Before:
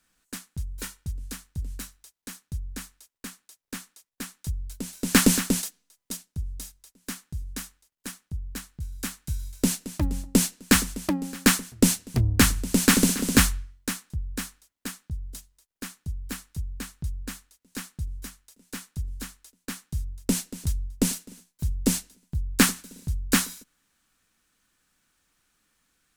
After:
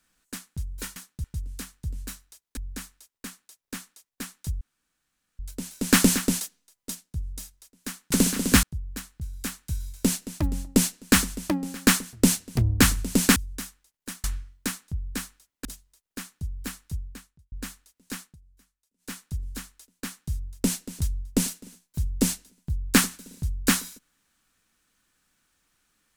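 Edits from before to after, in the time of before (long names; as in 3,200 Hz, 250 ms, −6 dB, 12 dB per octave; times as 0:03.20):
0:02.29–0:02.57: move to 0:00.96
0:04.61: splice in room tone 0.78 s
0:07.34–0:08.22: swap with 0:12.95–0:13.46
0:14.87–0:15.30: remove
0:16.62–0:17.17: fade out quadratic
0:17.88–0:18.76: duck −22.5 dB, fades 0.13 s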